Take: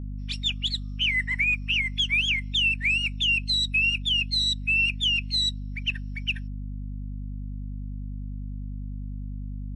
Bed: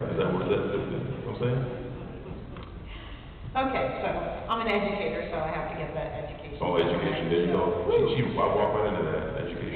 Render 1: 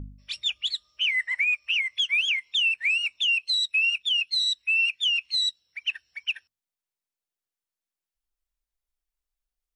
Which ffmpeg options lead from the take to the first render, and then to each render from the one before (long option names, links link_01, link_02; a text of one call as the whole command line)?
ffmpeg -i in.wav -af "bandreject=frequency=50:width_type=h:width=4,bandreject=frequency=100:width_type=h:width=4,bandreject=frequency=150:width_type=h:width=4,bandreject=frequency=200:width_type=h:width=4,bandreject=frequency=250:width_type=h:width=4" out.wav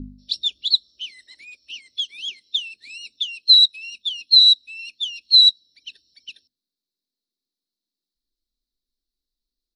ffmpeg -i in.wav -af "firequalizer=gain_entry='entry(130,0);entry(250,14);entry(940,-22);entry(2200,-24);entry(4000,15);entry(6600,-3)':delay=0.05:min_phase=1" out.wav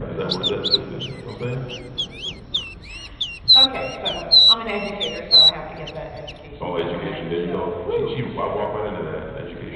ffmpeg -i in.wav -i bed.wav -filter_complex "[1:a]volume=0.5dB[link_01];[0:a][link_01]amix=inputs=2:normalize=0" out.wav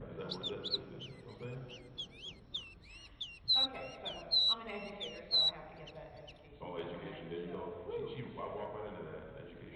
ffmpeg -i in.wav -af "volume=-18.5dB" out.wav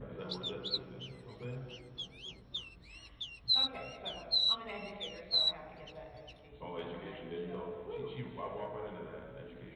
ffmpeg -i in.wav -filter_complex "[0:a]asplit=2[link_01][link_02];[link_02]adelay=16,volume=-6.5dB[link_03];[link_01][link_03]amix=inputs=2:normalize=0" out.wav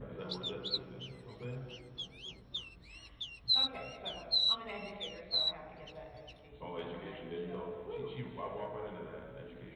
ffmpeg -i in.wav -filter_complex "[0:a]asettb=1/sr,asplit=3[link_01][link_02][link_03];[link_01]atrim=end=5.144[link_04];[link_02]atrim=start=5.14:end=5.82,asetpts=PTS-STARTPTS,afade=type=in:duration=0.004:curve=qsin,afade=type=out:start_time=0.676:duration=0.004:curve=qsin,highshelf=frequency=7100:gain=-11[link_05];[link_03]atrim=start=5.816[link_06];[link_04][link_05]acrossfade=duration=0.004:curve1=hsin:curve2=qsin[link_07];[link_07][link_06]acrossfade=duration=0.004:curve1=qsin:curve2=hsin" out.wav